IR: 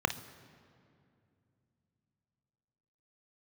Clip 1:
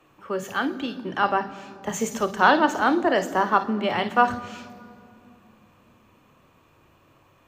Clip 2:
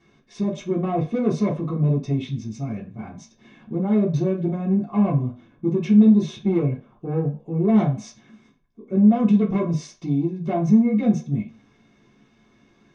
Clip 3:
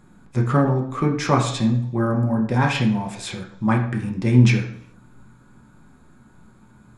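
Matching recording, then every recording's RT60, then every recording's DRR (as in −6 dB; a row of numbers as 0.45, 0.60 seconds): 1; 2.5 s, non-exponential decay, 0.75 s; 9.0, −8.5, 0.5 decibels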